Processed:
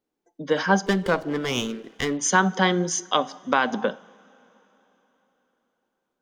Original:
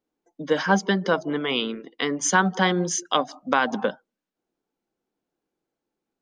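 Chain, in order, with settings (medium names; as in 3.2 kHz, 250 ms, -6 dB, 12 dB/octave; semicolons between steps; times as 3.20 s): reverberation, pre-delay 3 ms, DRR 16 dB; 0.86–2.18 s: sliding maximum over 5 samples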